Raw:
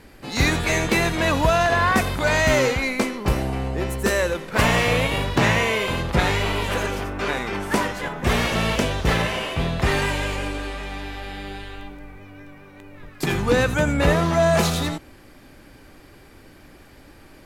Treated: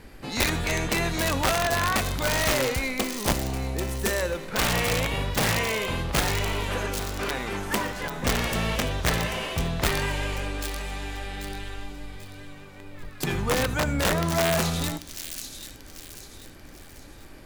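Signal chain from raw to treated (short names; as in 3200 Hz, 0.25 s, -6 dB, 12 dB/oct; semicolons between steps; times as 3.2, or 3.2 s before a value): low shelf 70 Hz +6 dB; de-hum 290.4 Hz, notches 2; in parallel at +1 dB: compressor 16:1, threshold -30 dBFS, peak gain reduction 20.5 dB; on the sum: wrapped overs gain 8.5 dB; thin delay 0.789 s, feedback 39%, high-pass 4400 Hz, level -4 dB; on a send at -19 dB: reverb, pre-delay 3 ms; on the sum: gain -7.5 dB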